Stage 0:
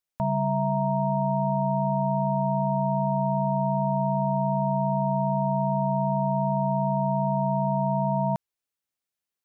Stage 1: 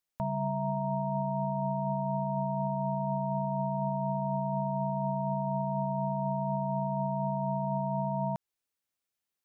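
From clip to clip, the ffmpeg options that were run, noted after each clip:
-af "alimiter=limit=-23.5dB:level=0:latency=1:release=143"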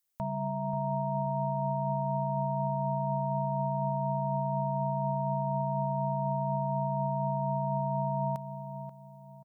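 -filter_complex "[0:a]asplit=2[a][b];[b]adelay=534,lowpass=f=1.1k:p=1,volume=-8.5dB,asplit=2[c][d];[d]adelay=534,lowpass=f=1.1k:p=1,volume=0.36,asplit=2[e][f];[f]adelay=534,lowpass=f=1.1k:p=1,volume=0.36,asplit=2[g][h];[h]adelay=534,lowpass=f=1.1k:p=1,volume=0.36[i];[a][c][e][g][i]amix=inputs=5:normalize=0,crystalizer=i=1.5:c=0,acontrast=76,volume=-8.5dB"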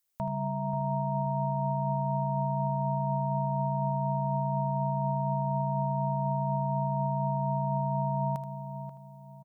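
-af "aecho=1:1:78:0.282,volume=1.5dB"

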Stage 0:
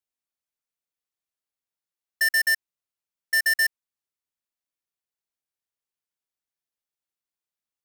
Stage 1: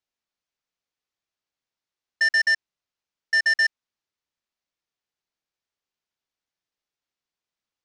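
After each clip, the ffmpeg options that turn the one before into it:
-filter_complex "[0:a]lowpass=f=6.3k:w=0.5412,lowpass=f=6.3k:w=1.3066,asplit=2[a][b];[b]alimiter=level_in=4.5dB:limit=-24dB:level=0:latency=1:release=32,volume=-4.5dB,volume=-2dB[c];[a][c]amix=inputs=2:normalize=0"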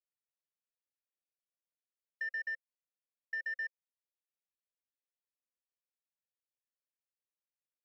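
-filter_complex "[0:a]acompressor=threshold=-22dB:ratio=6,asplit=3[a][b][c];[a]bandpass=f=530:t=q:w=8,volume=0dB[d];[b]bandpass=f=1.84k:t=q:w=8,volume=-6dB[e];[c]bandpass=f=2.48k:t=q:w=8,volume=-9dB[f];[d][e][f]amix=inputs=3:normalize=0,volume=-7dB"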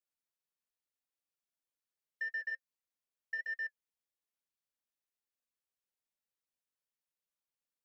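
-af "flanger=delay=3.5:depth=1.3:regen=-60:speed=1.7:shape=sinusoidal,volume=3.5dB"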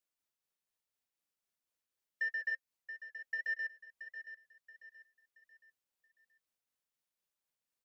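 -af "tremolo=f=4:d=0.3,aecho=1:1:677|1354|2031|2708:0.282|0.104|0.0386|0.0143,volume=3dB"

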